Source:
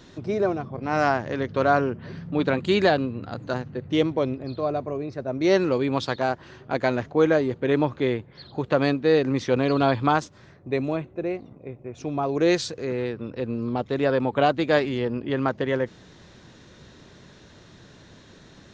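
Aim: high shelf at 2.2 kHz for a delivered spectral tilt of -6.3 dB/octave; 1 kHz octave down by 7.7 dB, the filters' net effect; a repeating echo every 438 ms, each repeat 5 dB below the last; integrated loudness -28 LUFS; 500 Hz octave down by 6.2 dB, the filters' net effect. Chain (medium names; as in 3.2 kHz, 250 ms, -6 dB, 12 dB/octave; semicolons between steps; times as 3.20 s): peaking EQ 500 Hz -5.5 dB; peaking EQ 1 kHz -7 dB; treble shelf 2.2 kHz -9 dB; feedback delay 438 ms, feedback 56%, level -5 dB; trim -0.5 dB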